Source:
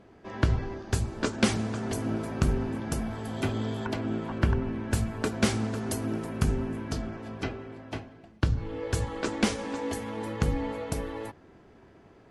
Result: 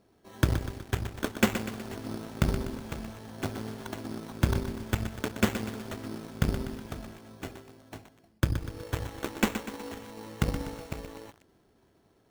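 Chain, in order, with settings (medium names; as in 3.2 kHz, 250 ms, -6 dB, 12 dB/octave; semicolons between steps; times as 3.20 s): Chebyshev shaper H 6 -29 dB, 7 -20 dB, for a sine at -9 dBFS; sample-and-hold 9×; bit-crushed delay 123 ms, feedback 55%, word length 7-bit, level -9 dB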